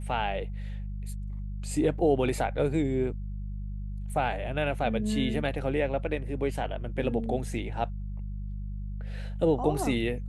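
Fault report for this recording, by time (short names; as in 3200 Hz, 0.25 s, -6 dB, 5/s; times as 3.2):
hum 50 Hz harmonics 4 -35 dBFS
1.99 gap 2.6 ms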